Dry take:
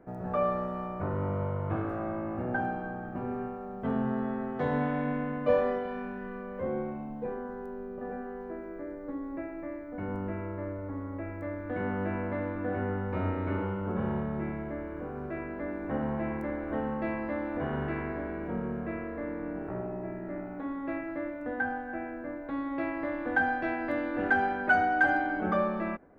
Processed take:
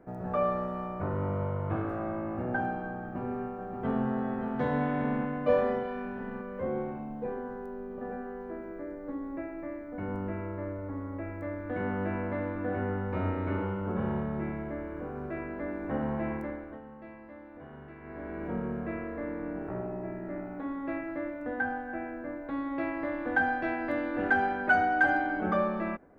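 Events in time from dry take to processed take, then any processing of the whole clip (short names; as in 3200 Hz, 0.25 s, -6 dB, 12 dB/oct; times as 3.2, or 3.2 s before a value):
3–4.09 echo throw 0.58 s, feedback 70%, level -6 dB
16.33–18.46 dip -15 dB, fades 0.46 s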